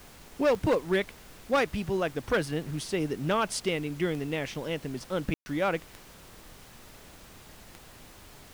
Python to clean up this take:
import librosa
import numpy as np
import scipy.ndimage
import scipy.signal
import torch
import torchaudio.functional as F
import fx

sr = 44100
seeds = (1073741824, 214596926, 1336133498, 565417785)

y = fx.fix_declick_ar(x, sr, threshold=10.0)
y = fx.fix_ambience(y, sr, seeds[0], print_start_s=5.96, print_end_s=6.46, start_s=5.34, end_s=5.46)
y = fx.noise_reduce(y, sr, print_start_s=5.87, print_end_s=6.37, reduce_db=23.0)